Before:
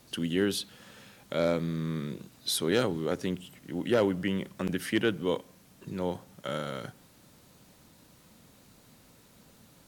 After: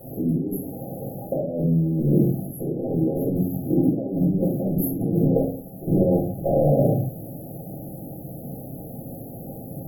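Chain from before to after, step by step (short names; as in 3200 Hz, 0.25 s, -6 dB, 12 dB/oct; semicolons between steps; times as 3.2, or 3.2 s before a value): 5.24–6.68 half-wave gain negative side -12 dB; HPF 99 Hz 6 dB/oct; negative-ratio compressor -39 dBFS, ratio -1; brick-wall FIR band-stop 820–11000 Hz; shoebox room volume 320 m³, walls furnished, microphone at 5 m; gain +7.5 dB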